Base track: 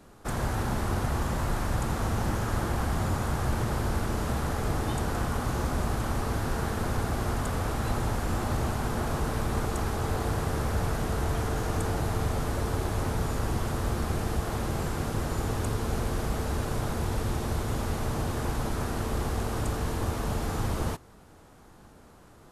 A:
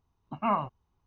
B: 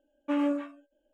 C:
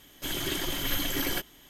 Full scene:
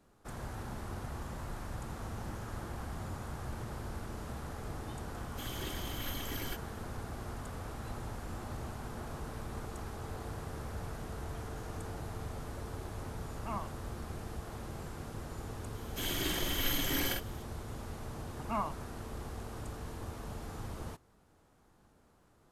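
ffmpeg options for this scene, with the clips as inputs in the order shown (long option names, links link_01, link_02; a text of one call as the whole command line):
ffmpeg -i bed.wav -i cue0.wav -i cue1.wav -i cue2.wav -filter_complex "[3:a]asplit=2[link_01][link_02];[1:a]asplit=2[link_03][link_04];[0:a]volume=-13dB[link_05];[link_02]asplit=2[link_06][link_07];[link_07]adelay=48,volume=-3dB[link_08];[link_06][link_08]amix=inputs=2:normalize=0[link_09];[link_01]atrim=end=1.69,asetpts=PTS-STARTPTS,volume=-11.5dB,afade=type=in:duration=0.004:curve=hsin,afade=type=out:start_time=1.686:duration=0.004:curve=hsin,adelay=5150[link_10];[link_03]atrim=end=1.06,asetpts=PTS-STARTPTS,volume=-13dB,afade=type=in:duration=0.004:curve=hsin,afade=type=out:start_time=1.056:duration=0.004:curve=hsin,adelay=13030[link_11];[link_09]atrim=end=1.69,asetpts=PTS-STARTPTS,volume=-5dB,afade=type=in:duration=0.004:curve=hsin,afade=type=out:start_time=1.686:duration=0.004:curve=hsin,adelay=15740[link_12];[link_04]atrim=end=1.06,asetpts=PTS-STARTPTS,volume=-8dB,afade=type=in:duration=0.004:curve=hsin,afade=type=out:start_time=1.056:duration=0.004:curve=hsin,adelay=18070[link_13];[link_05][link_10][link_11][link_12][link_13]amix=inputs=5:normalize=0" out.wav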